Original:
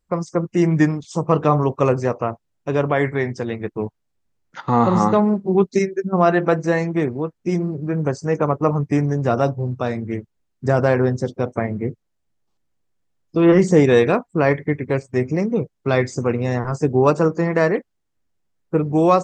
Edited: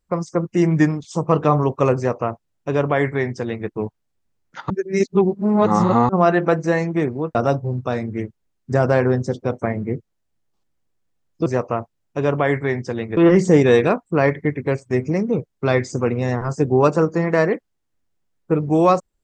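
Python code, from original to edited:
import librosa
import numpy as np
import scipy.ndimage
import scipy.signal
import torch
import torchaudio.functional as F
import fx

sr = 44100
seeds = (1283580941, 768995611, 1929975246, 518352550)

y = fx.edit(x, sr, fx.duplicate(start_s=1.97, length_s=1.71, to_s=13.4),
    fx.reverse_span(start_s=4.7, length_s=1.39),
    fx.cut(start_s=7.35, length_s=1.94), tone=tone)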